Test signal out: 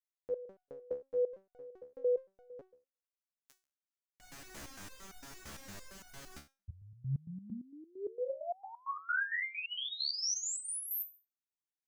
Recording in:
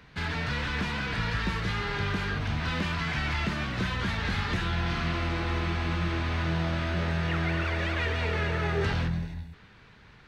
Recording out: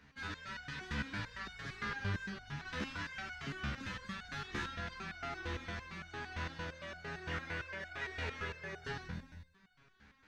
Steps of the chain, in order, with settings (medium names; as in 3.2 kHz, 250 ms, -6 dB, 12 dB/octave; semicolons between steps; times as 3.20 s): fifteen-band graphic EQ 250 Hz +4 dB, 1.6 kHz +5 dB, 6.3 kHz +6 dB; resonator arpeggio 8.8 Hz 71–730 Hz; trim -2 dB